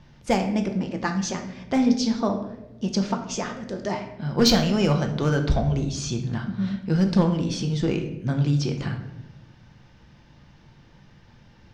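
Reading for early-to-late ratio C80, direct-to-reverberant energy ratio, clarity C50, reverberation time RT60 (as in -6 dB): 11.0 dB, 4.0 dB, 8.5 dB, 0.90 s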